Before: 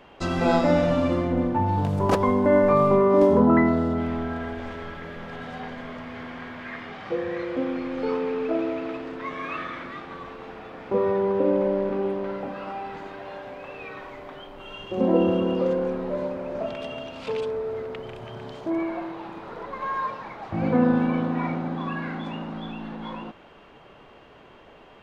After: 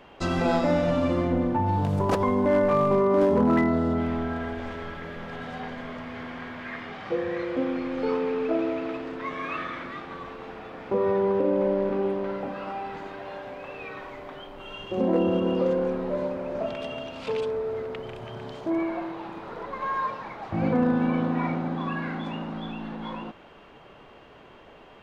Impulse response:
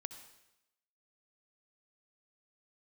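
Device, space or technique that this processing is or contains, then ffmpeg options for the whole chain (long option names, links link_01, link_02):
clipper into limiter: -af "asoftclip=type=hard:threshold=-12dB,alimiter=limit=-15dB:level=0:latency=1:release=84"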